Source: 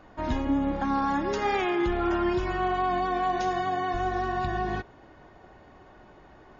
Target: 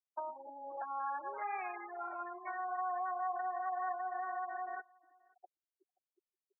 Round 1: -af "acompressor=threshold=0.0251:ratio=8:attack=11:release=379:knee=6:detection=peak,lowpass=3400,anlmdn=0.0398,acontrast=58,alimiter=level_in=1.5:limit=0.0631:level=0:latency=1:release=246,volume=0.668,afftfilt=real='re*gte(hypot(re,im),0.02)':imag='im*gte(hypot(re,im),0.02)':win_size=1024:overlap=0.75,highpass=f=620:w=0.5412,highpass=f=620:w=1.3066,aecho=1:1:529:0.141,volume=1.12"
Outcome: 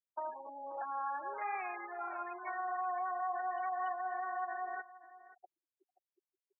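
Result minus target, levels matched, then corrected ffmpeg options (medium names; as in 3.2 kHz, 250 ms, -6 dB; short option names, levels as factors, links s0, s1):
echo-to-direct +10 dB; compression: peak gain reduction -5 dB
-af "acompressor=threshold=0.0126:ratio=8:attack=11:release=379:knee=6:detection=peak,lowpass=3400,anlmdn=0.0398,acontrast=58,alimiter=level_in=1.5:limit=0.0631:level=0:latency=1:release=246,volume=0.668,afftfilt=real='re*gte(hypot(re,im),0.02)':imag='im*gte(hypot(re,im),0.02)':win_size=1024:overlap=0.75,highpass=f=620:w=0.5412,highpass=f=620:w=1.3066,aecho=1:1:529:0.0447,volume=1.12"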